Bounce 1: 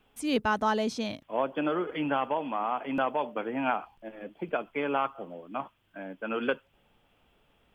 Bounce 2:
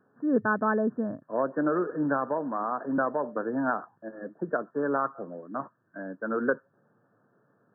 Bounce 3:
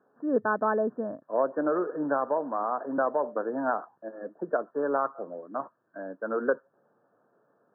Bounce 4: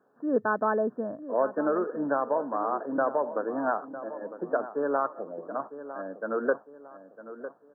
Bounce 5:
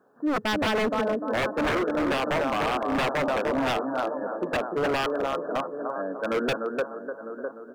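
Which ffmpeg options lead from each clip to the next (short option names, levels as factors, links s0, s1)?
-af "afftfilt=real='re*between(b*sr/4096,100,1800)':imag='im*between(b*sr/4096,100,1800)':win_size=4096:overlap=0.75,equalizer=f=830:w=3.2:g=-9,volume=1.5"
-af "bandpass=f=670:t=q:w=0.94:csg=0,volume=1.41"
-filter_complex "[0:a]asplit=2[s0][s1];[s1]adelay=954,lowpass=f=1700:p=1,volume=0.237,asplit=2[s2][s3];[s3]adelay=954,lowpass=f=1700:p=1,volume=0.4,asplit=2[s4][s5];[s5]adelay=954,lowpass=f=1700:p=1,volume=0.4,asplit=2[s6][s7];[s7]adelay=954,lowpass=f=1700:p=1,volume=0.4[s8];[s0][s2][s4][s6][s8]amix=inputs=5:normalize=0"
-af "aecho=1:1:299|598|897|1196:0.501|0.185|0.0686|0.0254,aeval=exprs='0.0596*(abs(mod(val(0)/0.0596+3,4)-2)-1)':c=same,volume=1.78"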